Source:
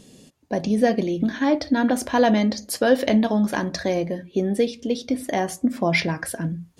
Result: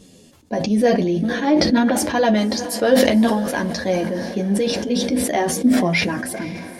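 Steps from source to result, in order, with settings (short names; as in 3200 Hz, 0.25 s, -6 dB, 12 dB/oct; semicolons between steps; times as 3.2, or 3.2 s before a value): chorus voices 2, 0.47 Hz, delay 11 ms, depth 2.1 ms; diffused feedback echo 0.503 s, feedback 54%, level -16 dB; sustainer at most 37 dB/s; gain +4 dB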